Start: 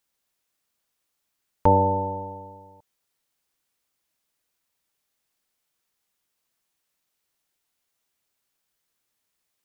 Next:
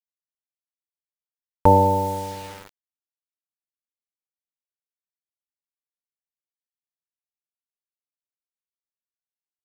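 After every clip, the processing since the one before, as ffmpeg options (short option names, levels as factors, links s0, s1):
-af "acrusher=bits=6:mix=0:aa=0.000001,volume=1.5"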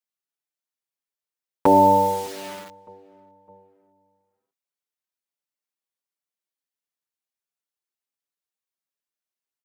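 -filter_complex "[0:a]highpass=190,asplit=2[s0][s1];[s1]adelay=609,lowpass=f=1200:p=1,volume=0.0668,asplit=2[s2][s3];[s3]adelay=609,lowpass=f=1200:p=1,volume=0.48,asplit=2[s4][s5];[s5]adelay=609,lowpass=f=1200:p=1,volume=0.48[s6];[s0][s2][s4][s6]amix=inputs=4:normalize=0,asplit=2[s7][s8];[s8]adelay=6,afreqshift=1.4[s9];[s7][s9]amix=inputs=2:normalize=1,volume=2"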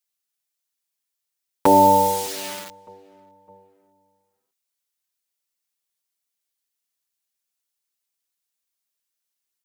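-af "highshelf=f=2500:g=11"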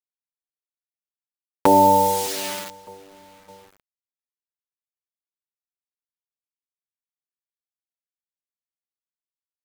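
-filter_complex "[0:a]asplit=2[s0][s1];[s1]acompressor=threshold=0.0794:ratio=6,volume=0.891[s2];[s0][s2]amix=inputs=2:normalize=0,acrusher=bits=7:mix=0:aa=0.000001,volume=0.75"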